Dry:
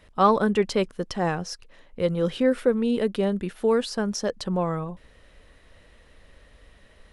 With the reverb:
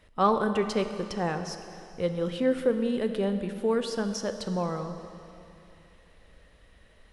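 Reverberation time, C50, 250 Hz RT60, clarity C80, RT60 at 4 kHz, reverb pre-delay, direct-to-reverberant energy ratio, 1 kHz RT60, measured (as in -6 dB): 2.8 s, 8.5 dB, 2.8 s, 9.0 dB, 2.7 s, 7 ms, 7.5 dB, 2.9 s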